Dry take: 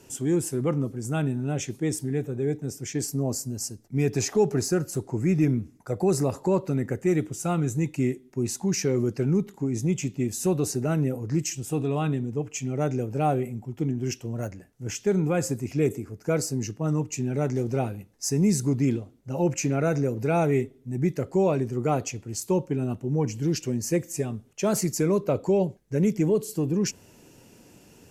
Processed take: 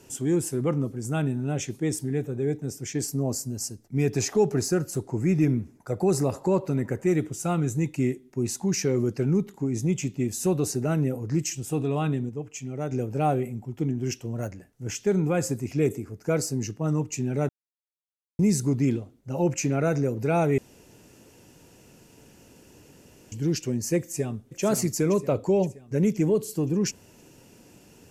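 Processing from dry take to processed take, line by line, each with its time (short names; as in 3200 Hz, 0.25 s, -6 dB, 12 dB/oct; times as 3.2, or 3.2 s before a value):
5.05–7.28 narrowing echo 79 ms, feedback 72%, level -20 dB
12.29–12.92 gain -5 dB
17.49–18.39 mute
20.58–23.32 room tone
23.99–24.62 echo throw 0.52 s, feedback 50%, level -7.5 dB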